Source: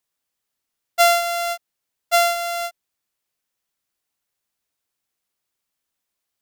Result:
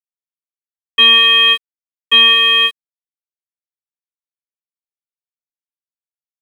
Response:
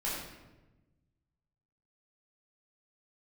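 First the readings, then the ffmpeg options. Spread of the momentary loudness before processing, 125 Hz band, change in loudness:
15 LU, no reading, +11.5 dB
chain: -af "lowpass=f=3300:t=q:w=0.5098,lowpass=f=3300:t=q:w=0.6013,lowpass=f=3300:t=q:w=0.9,lowpass=f=3300:t=q:w=2.563,afreqshift=-3900,apsyclip=7.5,aeval=exprs='sgn(val(0))*max(abs(val(0))-0.0178,0)':c=same,volume=0.75"

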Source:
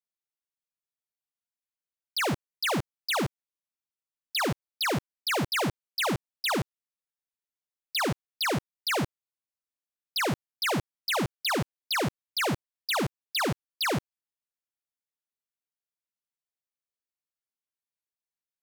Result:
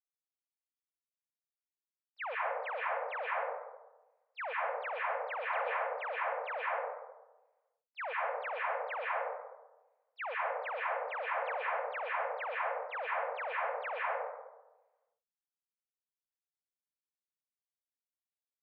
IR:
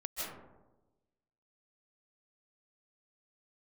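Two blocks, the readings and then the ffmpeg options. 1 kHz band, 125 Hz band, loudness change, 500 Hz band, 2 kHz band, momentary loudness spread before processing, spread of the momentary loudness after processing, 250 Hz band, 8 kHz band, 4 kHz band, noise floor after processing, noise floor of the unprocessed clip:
-1.5 dB, under -40 dB, -7.0 dB, -3.5 dB, -4.5 dB, 3 LU, 8 LU, under -40 dB, under -40 dB, -23.0 dB, under -85 dBFS, under -85 dBFS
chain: -filter_complex "[0:a]aeval=exprs='val(0)*gte(abs(val(0)),0.00422)':c=same[s0];[1:a]atrim=start_sample=2205,asetrate=48510,aresample=44100[s1];[s0][s1]afir=irnorm=-1:irlink=0,highpass=f=170:t=q:w=0.5412,highpass=f=170:t=q:w=1.307,lowpass=f=2100:t=q:w=0.5176,lowpass=f=2100:t=q:w=0.7071,lowpass=f=2100:t=q:w=1.932,afreqshift=320,volume=0.501"

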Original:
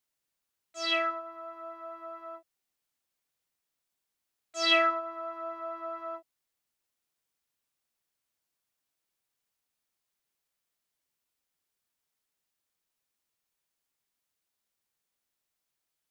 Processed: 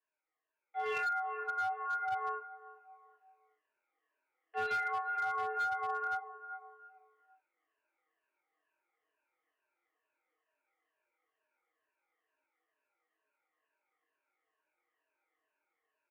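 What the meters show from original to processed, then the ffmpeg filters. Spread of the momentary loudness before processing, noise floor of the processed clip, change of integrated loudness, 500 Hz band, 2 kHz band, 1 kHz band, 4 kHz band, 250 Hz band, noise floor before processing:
19 LU, under -85 dBFS, -6.0 dB, -8.0 dB, -2.0 dB, +1.0 dB, -21.5 dB, under -20 dB, -85 dBFS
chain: -filter_complex "[0:a]afftfilt=real='re*pow(10,18/40*sin(2*PI*(1.3*log(max(b,1)*sr/1024/100)/log(2)-(-2.2)*(pts-256)/sr)))':imag='im*pow(10,18/40*sin(2*PI*(1.3*log(max(b,1)*sr/1024/100)/log(2)-(-2.2)*(pts-256)/sr)))':win_size=1024:overlap=0.75,asoftclip=type=tanh:threshold=0.0794,asplit=2[s0][s1];[s1]adelay=389,lowpass=f=1200:p=1,volume=0.178,asplit=2[s2][s3];[s3]adelay=389,lowpass=f=1200:p=1,volume=0.37,asplit=2[s4][s5];[s5]adelay=389,lowpass=f=1200:p=1,volume=0.37[s6];[s0][s2][s4][s6]amix=inputs=4:normalize=0,highpass=f=220:t=q:w=0.5412,highpass=f=220:t=q:w=1.307,lowpass=f=2300:t=q:w=0.5176,lowpass=f=2300:t=q:w=0.7071,lowpass=f=2300:t=q:w=1.932,afreqshift=100,dynaudnorm=f=140:g=13:m=2.37,aecho=1:1:6.4:0.47,flanger=delay=18:depth=5.7:speed=0.16,acompressor=threshold=0.0282:ratio=16,flanger=delay=3.1:depth=6.3:regen=-86:speed=0.32:shape=triangular,volume=50.1,asoftclip=hard,volume=0.02,volume=1.68"

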